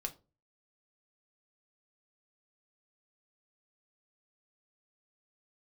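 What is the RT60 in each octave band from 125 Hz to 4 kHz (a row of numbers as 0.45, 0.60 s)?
0.55, 0.40, 0.35, 0.25, 0.20, 0.20 s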